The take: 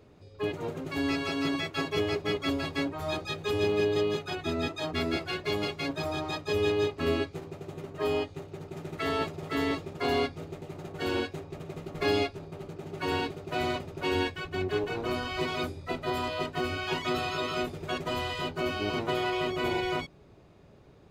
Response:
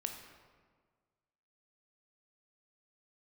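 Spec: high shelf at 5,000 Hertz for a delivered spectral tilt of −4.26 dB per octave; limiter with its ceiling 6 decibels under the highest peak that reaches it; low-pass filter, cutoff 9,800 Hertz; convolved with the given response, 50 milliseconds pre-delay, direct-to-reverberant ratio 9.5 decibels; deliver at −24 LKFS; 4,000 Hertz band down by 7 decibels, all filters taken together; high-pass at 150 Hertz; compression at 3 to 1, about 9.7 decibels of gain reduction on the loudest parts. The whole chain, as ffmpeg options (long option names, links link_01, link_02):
-filter_complex "[0:a]highpass=150,lowpass=9800,equalizer=frequency=4000:width_type=o:gain=-7.5,highshelf=frequency=5000:gain=-5,acompressor=threshold=-37dB:ratio=3,alimiter=level_in=7dB:limit=-24dB:level=0:latency=1,volume=-7dB,asplit=2[link_01][link_02];[1:a]atrim=start_sample=2205,adelay=50[link_03];[link_02][link_03]afir=irnorm=-1:irlink=0,volume=-9dB[link_04];[link_01][link_04]amix=inputs=2:normalize=0,volume=16.5dB"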